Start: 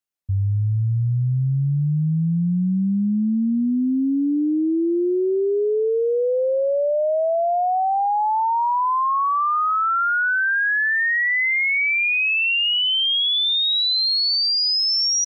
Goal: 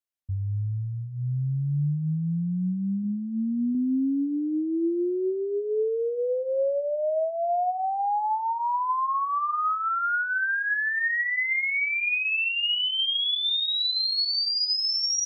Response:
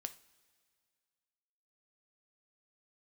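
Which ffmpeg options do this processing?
-filter_complex "[0:a]asettb=1/sr,asplit=3[a][b][c];[a]atrim=end=3.024[d];[b]atrim=start=3.02:end=3.75,asetpts=PTS-STARTPTS,afade=t=in:d=0.004:c=qsin,afade=t=out:st=0.726:d=0.004:c=qsin,bandreject=f=61.87:t=h:w=4,bandreject=f=123.74:t=h:w=4,bandreject=f=185.61:t=h:w=4,bandreject=f=247.48:t=h:w=4,bandreject=f=309.35:t=h:w=4,bandreject=f=371.22:t=h:w=4,bandreject=f=433.09:t=h:w=4,bandreject=f=494.96:t=h:w=4,bandreject=f=556.83:t=h:w=4,bandreject=f=618.7:t=h:w=4,bandreject=f=680.57:t=h:w=4,bandreject=f=742.44:t=h:w=4,bandreject=f=804.31:t=h:w=4,bandreject=f=866.18:t=h:w=4,bandreject=f=928.05:t=h:w=4,bandreject=f=989.92:t=h:w=4,bandreject=f=1.05179k:t=h:w=4,bandreject=f=1.11366k:t=h:w=4,bandreject=f=1.17553k:t=h:w=4,bandreject=f=1.2374k:t=h:w=4,bandreject=f=1.29927k:t=h:w=4,bandreject=f=1.36114k:t=h:w=4,bandreject=f=1.42301k:t=h:w=4,bandreject=f=1.48488k:t=h:w=4,bandreject=f=1.54675k:t=h:w=4,bandreject=f=1.60862k:t=h:w=4,bandreject=f=1.67049k:t=h:w=4,bandreject=f=1.73236k:t=h:w=4,bandreject=f=1.79423k:t=h:w=4,bandreject=f=1.8561k:t=h:w=4,bandreject=f=1.91797k:t=h:w=4,bandreject=f=1.97984k:t=h:w=4,bandreject=f=2.04171k:t=h:w=4,bandreject=f=2.10358k:t=h:w=4,bandreject=f=2.16545k:t=h:w=4[e];[c]atrim=start=3.746[f];[d][e]acrossfade=d=0.004:c1=hsin:c2=qsin[g];[g][f]acrossfade=d=0.004:c1=qsin:c2=hsin[h];[1:a]atrim=start_sample=2205,atrim=end_sample=6615[i];[h][i]afir=irnorm=-1:irlink=0,volume=-3dB"

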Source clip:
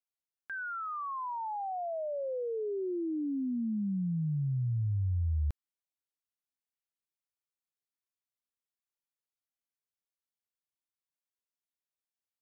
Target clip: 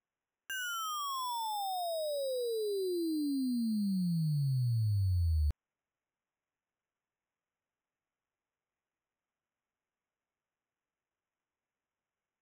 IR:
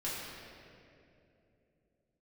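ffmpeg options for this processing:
-af "acrusher=samples=10:mix=1:aa=0.000001"

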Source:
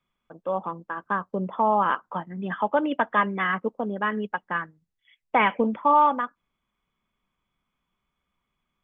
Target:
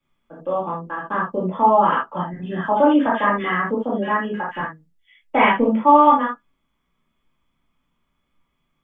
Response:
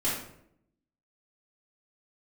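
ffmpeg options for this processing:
-filter_complex "[0:a]asettb=1/sr,asplit=3[a][b][c];[a]atrim=end=2.334[d];[b]atrim=start=2.33:end=4.6,asetpts=PTS-STARTPTS,afade=t=in:d=0.004:c=qsin,afade=t=out:st=2.266:d=0.004:c=qsin,acrossover=split=2100[e][f];[e]adelay=60[g];[g][f]amix=inputs=2:normalize=0,atrim=end_sample=100107[h];[c]atrim=start=4.596[i];[d][h]acrossfade=d=0.004:c1=hsin:c2=qsin[j];[j][i]acrossfade=d=0.004:c1=qsin:c2=hsin[k];[1:a]atrim=start_sample=2205,atrim=end_sample=3969[l];[k][l]afir=irnorm=-1:irlink=0,volume=-2.5dB"

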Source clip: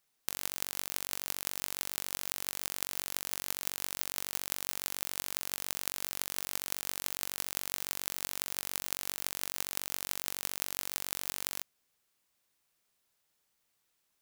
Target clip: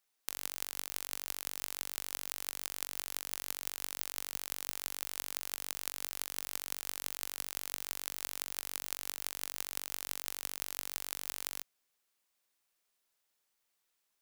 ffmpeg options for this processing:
-af "equalizer=f=97:w=0.59:g=-10.5,volume=-3dB"

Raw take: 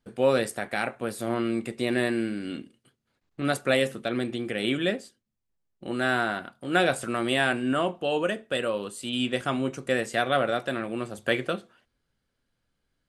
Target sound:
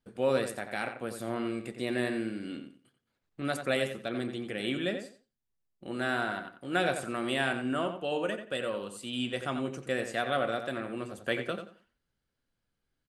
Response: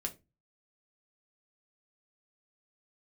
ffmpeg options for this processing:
-filter_complex "[0:a]asplit=2[a][b];[b]adelay=89,lowpass=f=3.7k:p=1,volume=-8dB,asplit=2[c][d];[d]adelay=89,lowpass=f=3.7k:p=1,volume=0.24,asplit=2[e][f];[f]adelay=89,lowpass=f=3.7k:p=1,volume=0.24[g];[a][c][e][g]amix=inputs=4:normalize=0,volume=-6dB"

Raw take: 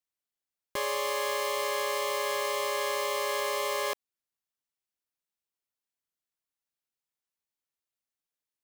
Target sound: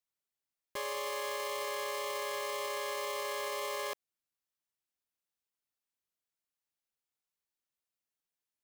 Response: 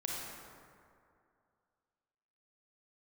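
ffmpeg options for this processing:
-af "alimiter=level_in=3dB:limit=-24dB:level=0:latency=1:release=19,volume=-3dB,volume=-2dB"

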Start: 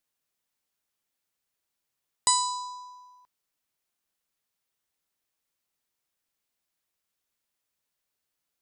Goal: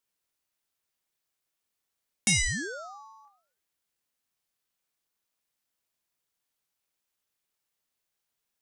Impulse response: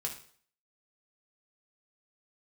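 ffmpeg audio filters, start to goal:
-filter_complex "[0:a]asplit=2[a][b];[1:a]atrim=start_sample=2205,lowshelf=f=340:g=-11,adelay=27[c];[b][c]afir=irnorm=-1:irlink=0,volume=-4.5dB[d];[a][d]amix=inputs=2:normalize=0,aeval=exprs='val(0)*sin(2*PI*710*n/s+710*0.85/0.48*sin(2*PI*0.48*n/s))':c=same,volume=1dB"

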